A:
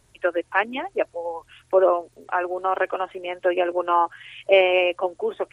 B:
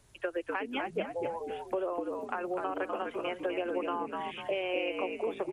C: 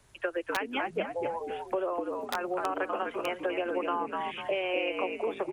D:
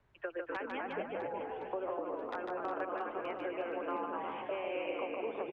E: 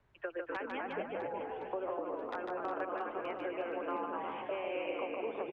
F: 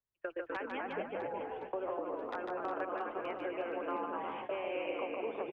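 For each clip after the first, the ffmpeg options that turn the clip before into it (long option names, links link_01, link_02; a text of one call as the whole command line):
ffmpeg -i in.wav -filter_complex "[0:a]acompressor=threshold=-23dB:ratio=6,asplit=2[link_01][link_02];[link_02]asplit=4[link_03][link_04][link_05][link_06];[link_03]adelay=248,afreqshift=-69,volume=-5.5dB[link_07];[link_04]adelay=496,afreqshift=-138,volume=-15.7dB[link_08];[link_05]adelay=744,afreqshift=-207,volume=-25.8dB[link_09];[link_06]adelay=992,afreqshift=-276,volume=-36dB[link_10];[link_07][link_08][link_09][link_10]amix=inputs=4:normalize=0[link_11];[link_01][link_11]amix=inputs=2:normalize=0,acrossover=split=330|3000[link_12][link_13][link_14];[link_13]acompressor=threshold=-31dB:ratio=2.5[link_15];[link_12][link_15][link_14]amix=inputs=3:normalize=0,volume=-3dB" out.wav
ffmpeg -i in.wav -filter_complex "[0:a]acrossover=split=310|590[link_01][link_02][link_03];[link_03]aeval=exprs='(mod(16.8*val(0)+1,2)-1)/16.8':channel_layout=same[link_04];[link_01][link_02][link_04]amix=inputs=3:normalize=0,equalizer=frequency=1400:width=0.52:gain=4.5" out.wav
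ffmpeg -i in.wav -filter_complex "[0:a]lowpass=2200,asplit=2[link_01][link_02];[link_02]aecho=0:1:150|360|654|1066|1642:0.631|0.398|0.251|0.158|0.1[link_03];[link_01][link_03]amix=inputs=2:normalize=0,volume=-8dB" out.wav
ffmpeg -i in.wav -af anull out.wav
ffmpeg -i in.wav -af "agate=range=-28dB:threshold=-42dB:ratio=16:detection=peak" out.wav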